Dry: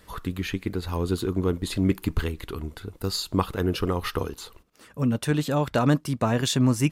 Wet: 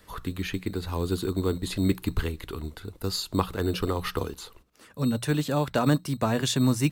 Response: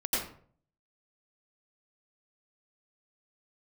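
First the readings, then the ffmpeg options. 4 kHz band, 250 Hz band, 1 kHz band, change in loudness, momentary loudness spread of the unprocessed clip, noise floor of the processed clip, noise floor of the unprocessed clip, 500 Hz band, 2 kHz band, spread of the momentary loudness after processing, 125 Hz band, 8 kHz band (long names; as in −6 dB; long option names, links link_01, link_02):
−1.0 dB, −2.0 dB, −1.5 dB, −1.5 dB, 12 LU, −56 dBFS, −55 dBFS, −1.5 dB, −1.5 dB, 12 LU, −2.0 dB, −1.0 dB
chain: -filter_complex "[0:a]bandreject=frequency=60:width_type=h:width=6,bandreject=frequency=120:width_type=h:width=6,bandreject=frequency=180:width_type=h:width=6,acrossover=split=410|640|6000[link_01][link_02][link_03][link_04];[link_01]acrusher=samples=11:mix=1:aa=0.000001[link_05];[link_05][link_02][link_03][link_04]amix=inputs=4:normalize=0,volume=-1.5dB"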